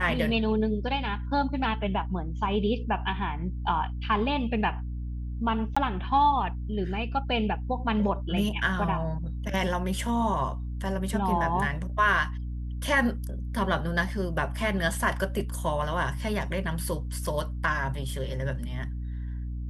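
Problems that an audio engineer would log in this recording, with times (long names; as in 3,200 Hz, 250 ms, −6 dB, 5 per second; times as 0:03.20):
mains hum 60 Hz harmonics 5 −33 dBFS
0:05.75–0:05.76: drop-out 15 ms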